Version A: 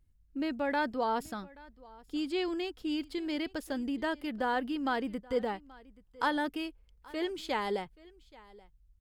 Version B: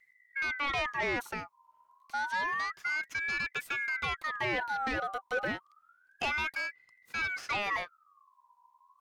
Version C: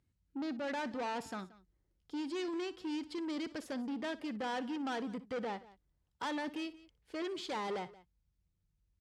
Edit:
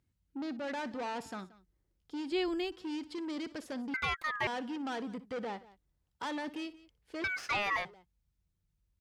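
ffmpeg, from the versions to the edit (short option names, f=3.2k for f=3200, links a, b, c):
-filter_complex "[1:a]asplit=2[a][b];[2:a]asplit=4[c][d][e][f];[c]atrim=end=2.322[g];[0:a]atrim=start=2.318:end=2.722[h];[d]atrim=start=2.718:end=3.942[i];[a]atrim=start=3.938:end=4.472[j];[e]atrim=start=4.468:end=7.242[k];[b]atrim=start=7.238:end=7.852[l];[f]atrim=start=7.848[m];[g][h]acrossfade=d=0.004:c1=hsin:c2=hsin[n];[n][i]acrossfade=d=0.004:c1=hsin:c2=hsin[o];[o][j]acrossfade=d=0.004:c1=hsin:c2=hsin[p];[p][k]acrossfade=d=0.004:c1=hsin:c2=hsin[q];[q][l]acrossfade=d=0.004:c1=hsin:c2=hsin[r];[r][m]acrossfade=d=0.004:c1=hsin:c2=hsin"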